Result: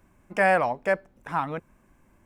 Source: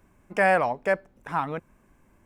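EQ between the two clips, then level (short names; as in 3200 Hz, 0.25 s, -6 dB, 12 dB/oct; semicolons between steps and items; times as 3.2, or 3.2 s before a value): notch 430 Hz, Q 12; 0.0 dB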